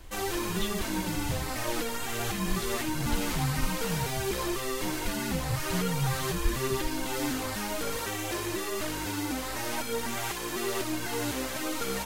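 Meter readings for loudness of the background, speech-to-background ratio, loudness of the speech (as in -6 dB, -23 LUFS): -32.0 LUFS, -4.5 dB, -36.5 LUFS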